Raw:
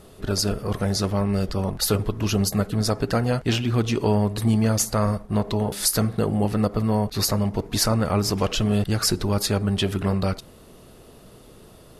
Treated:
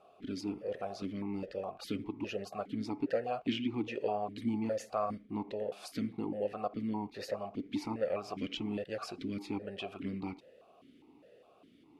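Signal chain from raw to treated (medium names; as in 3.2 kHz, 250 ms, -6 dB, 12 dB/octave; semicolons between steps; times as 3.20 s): stepped vowel filter 4.9 Hz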